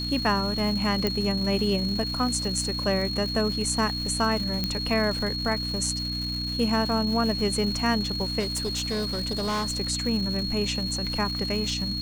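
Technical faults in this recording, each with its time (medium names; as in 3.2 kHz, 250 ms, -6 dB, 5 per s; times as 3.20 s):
crackle 480 per s -33 dBFS
hum 60 Hz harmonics 5 -33 dBFS
whine 4.3 kHz -30 dBFS
1.07 s: pop -11 dBFS
4.64 s: pop -12 dBFS
8.39–9.79 s: clipped -24 dBFS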